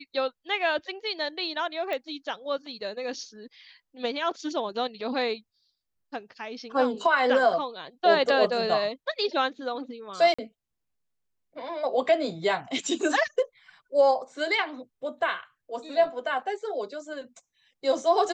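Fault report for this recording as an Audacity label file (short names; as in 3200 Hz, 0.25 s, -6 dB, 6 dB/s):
1.930000	1.930000	pop -20 dBFS
10.340000	10.380000	gap 45 ms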